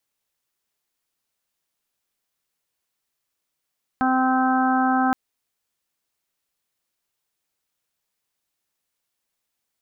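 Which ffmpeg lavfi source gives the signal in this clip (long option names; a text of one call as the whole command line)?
ffmpeg -f lavfi -i "aevalsrc='0.0944*sin(2*PI*259*t)+0.0133*sin(2*PI*518*t)+0.0891*sin(2*PI*777*t)+0.0335*sin(2*PI*1036*t)+0.0501*sin(2*PI*1295*t)+0.0398*sin(2*PI*1554*t)':duration=1.12:sample_rate=44100" out.wav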